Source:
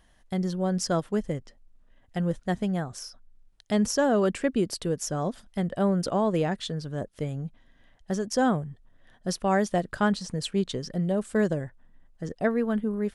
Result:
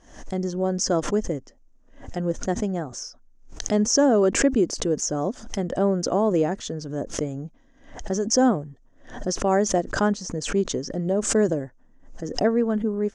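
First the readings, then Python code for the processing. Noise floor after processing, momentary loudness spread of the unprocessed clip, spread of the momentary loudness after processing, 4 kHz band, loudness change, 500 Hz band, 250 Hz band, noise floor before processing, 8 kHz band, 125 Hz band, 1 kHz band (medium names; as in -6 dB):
-55 dBFS, 11 LU, 13 LU, +4.5 dB, +4.0 dB, +5.0 dB, +3.0 dB, -60 dBFS, +10.0 dB, -0.5 dB, +2.5 dB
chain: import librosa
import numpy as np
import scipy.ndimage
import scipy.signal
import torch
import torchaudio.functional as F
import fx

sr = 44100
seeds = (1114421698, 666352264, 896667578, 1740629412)

y = fx.curve_eq(x, sr, hz=(180.0, 280.0, 4100.0, 6400.0, 11000.0), db=(0, 9, -5, 12, -18))
y = fx.pre_swell(y, sr, db_per_s=96.0)
y = y * librosa.db_to_amplitude(-1.5)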